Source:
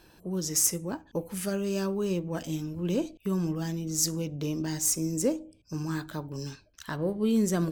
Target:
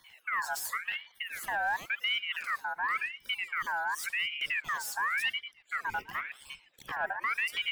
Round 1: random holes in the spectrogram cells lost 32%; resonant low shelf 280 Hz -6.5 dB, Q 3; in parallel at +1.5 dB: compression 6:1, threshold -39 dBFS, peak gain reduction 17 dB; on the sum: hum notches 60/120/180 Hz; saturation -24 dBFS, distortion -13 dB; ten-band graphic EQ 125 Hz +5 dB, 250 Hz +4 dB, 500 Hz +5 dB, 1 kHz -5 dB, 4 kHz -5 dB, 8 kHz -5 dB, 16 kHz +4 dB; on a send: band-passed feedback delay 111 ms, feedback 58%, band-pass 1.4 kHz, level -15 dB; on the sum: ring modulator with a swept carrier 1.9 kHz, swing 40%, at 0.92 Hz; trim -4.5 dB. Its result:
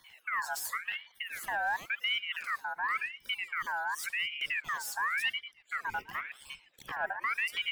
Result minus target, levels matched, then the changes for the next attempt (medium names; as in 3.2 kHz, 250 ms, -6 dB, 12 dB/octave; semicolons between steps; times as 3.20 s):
compression: peak gain reduction +6 dB
change: compression 6:1, threshold -31.5 dBFS, peak gain reduction 10.5 dB